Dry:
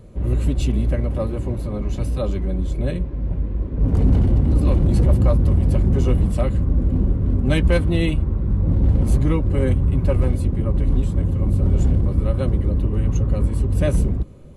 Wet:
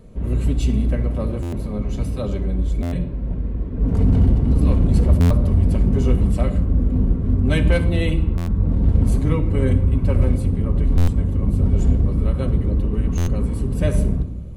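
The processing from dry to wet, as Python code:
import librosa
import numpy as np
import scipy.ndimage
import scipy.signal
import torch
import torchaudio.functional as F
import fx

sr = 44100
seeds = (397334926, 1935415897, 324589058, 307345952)

y = fx.room_shoebox(x, sr, seeds[0], volume_m3=3300.0, walls='furnished', distance_m=1.6)
y = fx.buffer_glitch(y, sr, at_s=(1.42, 2.82, 5.2, 8.37, 10.97, 13.17), block=512, repeats=8)
y = y * 10.0 ** (-1.5 / 20.0)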